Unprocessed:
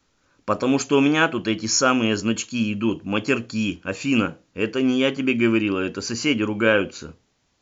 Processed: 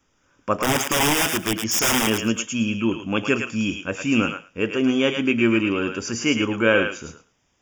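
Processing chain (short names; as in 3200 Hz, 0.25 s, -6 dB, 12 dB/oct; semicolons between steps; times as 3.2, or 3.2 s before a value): 0.61–2.07 wrapped overs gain 14.5 dB; Butterworth band-stop 4200 Hz, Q 3.5; on a send: thinning echo 0.108 s, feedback 15%, high-pass 1100 Hz, level -3.5 dB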